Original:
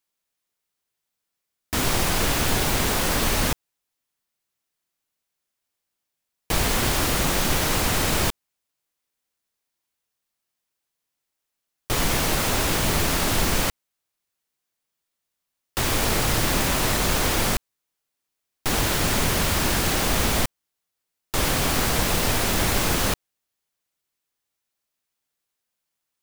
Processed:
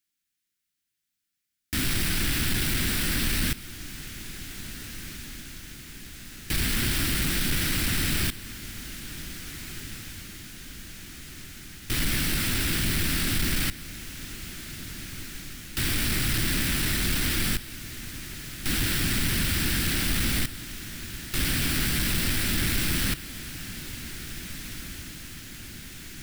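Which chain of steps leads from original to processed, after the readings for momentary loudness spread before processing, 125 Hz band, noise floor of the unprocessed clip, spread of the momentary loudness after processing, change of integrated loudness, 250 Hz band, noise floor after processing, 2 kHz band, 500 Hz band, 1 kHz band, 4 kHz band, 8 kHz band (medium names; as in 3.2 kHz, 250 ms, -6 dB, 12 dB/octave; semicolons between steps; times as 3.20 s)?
5 LU, -2.0 dB, -82 dBFS, 16 LU, -5.0 dB, -2.5 dB, -82 dBFS, -2.5 dB, -12.5 dB, -13.0 dB, -2.5 dB, -4.0 dB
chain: high-order bell 700 Hz -16 dB; saturation -19 dBFS, distortion -15 dB; echo that smears into a reverb 1825 ms, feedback 63%, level -13 dB; dynamic bell 6.6 kHz, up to -8 dB, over -49 dBFS, Q 4.8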